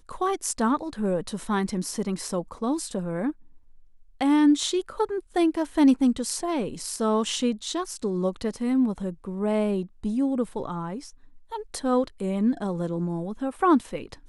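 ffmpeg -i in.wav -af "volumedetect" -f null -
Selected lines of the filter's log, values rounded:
mean_volume: -26.0 dB
max_volume: -9.5 dB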